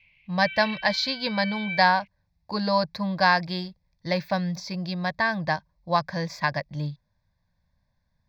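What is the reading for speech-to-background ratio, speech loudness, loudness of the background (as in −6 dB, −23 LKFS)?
10.0 dB, −25.5 LKFS, −35.5 LKFS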